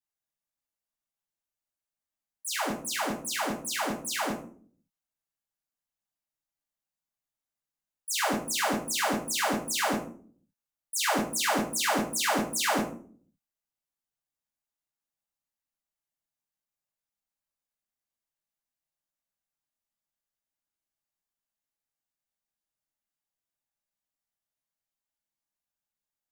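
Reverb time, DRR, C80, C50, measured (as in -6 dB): 0.45 s, -3.5 dB, 12.0 dB, 7.5 dB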